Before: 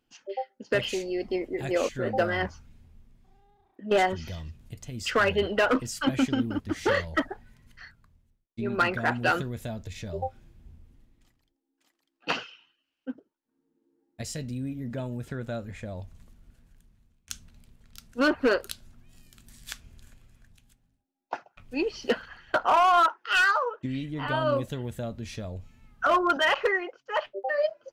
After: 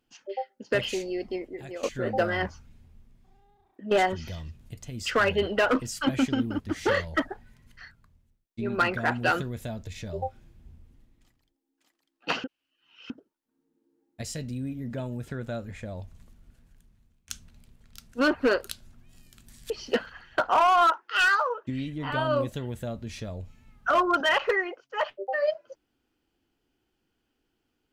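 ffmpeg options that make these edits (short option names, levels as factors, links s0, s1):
-filter_complex "[0:a]asplit=5[s0][s1][s2][s3][s4];[s0]atrim=end=1.83,asetpts=PTS-STARTPTS,afade=t=out:st=1.03:d=0.8:silence=0.16788[s5];[s1]atrim=start=1.83:end=12.442,asetpts=PTS-STARTPTS,afade=t=in:d=0.004:c=hsin:silence=0.16788[s6];[s2]atrim=start=12.438:end=13.102,asetpts=PTS-STARTPTS,areverse[s7];[s3]atrim=start=13.098:end=19.702[s8];[s4]atrim=start=21.858[s9];[s5][s6]concat=n=2:v=0:a=1[s10];[s10][s7]acrossfade=d=0.004:c1=hsin:c2=hsin[s11];[s11][s8]acrossfade=d=0.004:c1=hsin:c2=hsin[s12];[s12][s9]acrossfade=d=0.004:c1=hsin:c2=hsin"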